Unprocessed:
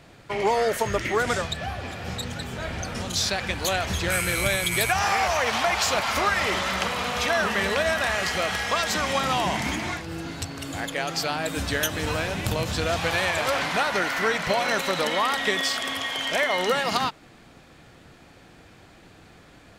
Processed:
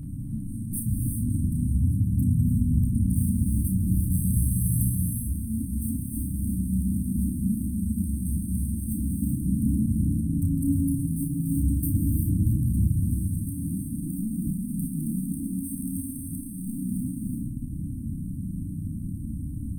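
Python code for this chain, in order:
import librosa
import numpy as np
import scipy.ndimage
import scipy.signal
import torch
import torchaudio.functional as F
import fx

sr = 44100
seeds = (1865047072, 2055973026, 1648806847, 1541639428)

p1 = fx.low_shelf(x, sr, hz=410.0, db=8.5)
p2 = fx.over_compress(p1, sr, threshold_db=-33.0, ratio=-1.0)
p3 = p1 + (p2 * librosa.db_to_amplitude(-1.0))
p4 = 10.0 ** (-20.5 / 20.0) * np.tanh(p3 / 10.0 ** (-20.5 / 20.0))
p5 = fx.brickwall_bandstop(p4, sr, low_hz=300.0, high_hz=8300.0)
p6 = p5 + fx.room_early_taps(p5, sr, ms=(32, 58), db=(-5.0, -11.5), dry=0)
y = fx.rev_gated(p6, sr, seeds[0], gate_ms=410, shape='rising', drr_db=1.5)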